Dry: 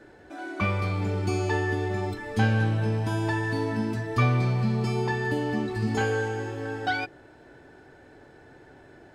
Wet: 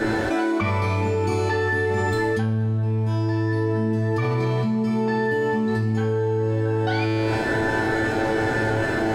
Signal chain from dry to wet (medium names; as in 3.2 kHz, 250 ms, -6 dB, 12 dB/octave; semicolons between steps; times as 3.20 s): feedback comb 110 Hz, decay 0.72 s, harmonics all, mix 90%; level flattener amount 100%; trim +1.5 dB